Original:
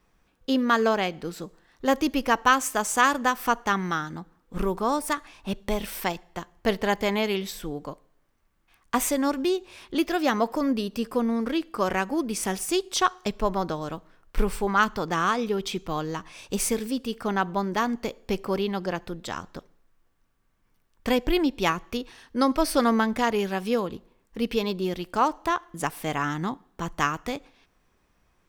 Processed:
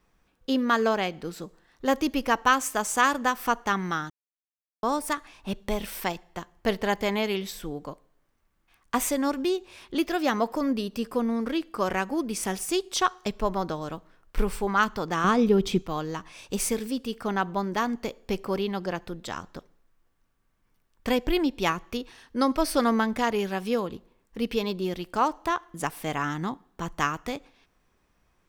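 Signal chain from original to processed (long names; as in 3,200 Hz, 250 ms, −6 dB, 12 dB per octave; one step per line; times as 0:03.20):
0:04.10–0:04.83: silence
0:15.24–0:15.82: low-shelf EQ 470 Hz +12 dB
level −1.5 dB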